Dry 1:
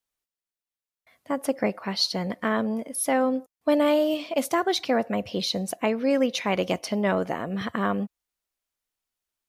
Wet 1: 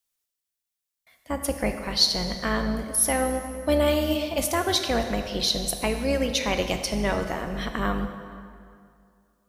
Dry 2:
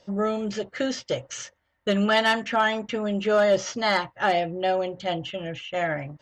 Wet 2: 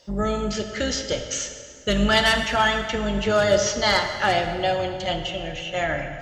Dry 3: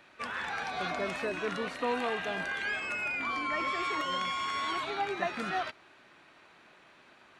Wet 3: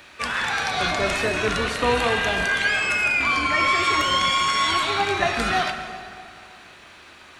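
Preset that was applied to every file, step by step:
octave divider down 2 oct, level -2 dB; treble shelf 2.9 kHz +10.5 dB; plate-style reverb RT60 2.3 s, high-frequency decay 0.7×, DRR 5.5 dB; peak normalisation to -6 dBFS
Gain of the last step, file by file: -3.0 dB, -0.5 dB, +8.0 dB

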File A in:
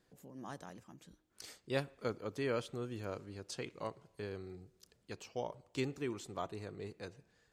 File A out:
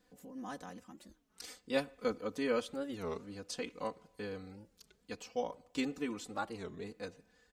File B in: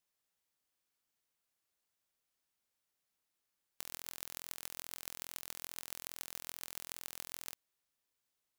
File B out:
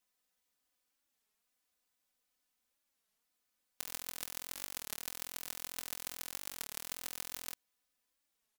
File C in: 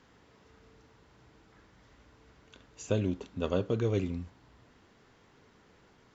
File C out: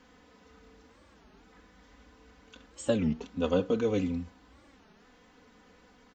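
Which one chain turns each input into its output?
comb 4 ms, depth 93%; warped record 33 1/3 rpm, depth 250 cents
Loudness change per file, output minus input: +2.5 LU, +2.5 LU, +2.0 LU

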